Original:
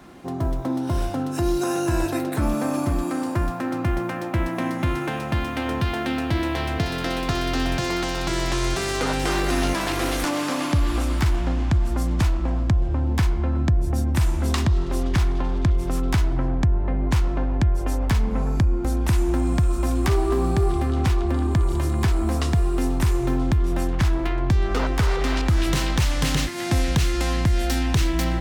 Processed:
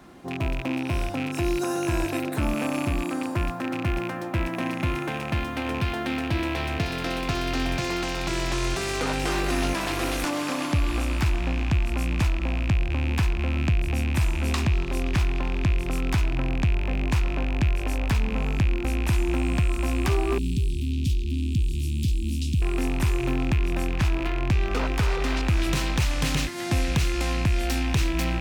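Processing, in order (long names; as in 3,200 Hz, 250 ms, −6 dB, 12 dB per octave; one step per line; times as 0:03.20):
loose part that buzzes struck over −28 dBFS, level −19 dBFS
0:20.38–0:22.62: elliptic band-stop filter 270–3,300 Hz, stop band 70 dB
level −3 dB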